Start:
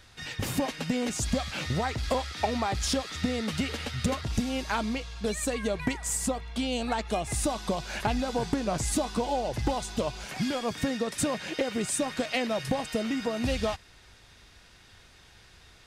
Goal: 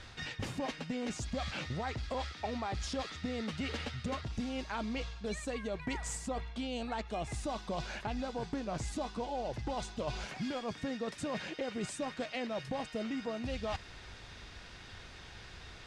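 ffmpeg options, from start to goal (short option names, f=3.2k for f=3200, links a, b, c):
-af "lowpass=7.4k,highshelf=f=4.8k:g=-5,areverse,acompressor=threshold=-41dB:ratio=6,areverse,volume=5.5dB"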